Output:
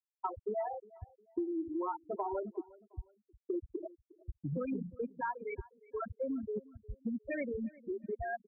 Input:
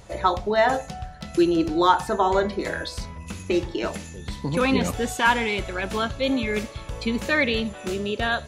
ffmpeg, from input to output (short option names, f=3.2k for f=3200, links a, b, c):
-filter_complex "[0:a]afftfilt=real='re*gte(hypot(re,im),0.398)':imag='im*gte(hypot(re,im),0.398)':win_size=1024:overlap=0.75,equalizer=f=1.9k:t=o:w=0.77:g=-12.5,acompressor=threshold=-30dB:ratio=6,asplit=2[a][b];[b]adelay=358,lowpass=f=4.1k:p=1,volume=-21.5dB,asplit=2[c][d];[d]adelay=358,lowpass=f=4.1k:p=1,volume=0.32[e];[c][e]amix=inputs=2:normalize=0[f];[a][f]amix=inputs=2:normalize=0,volume=-4dB"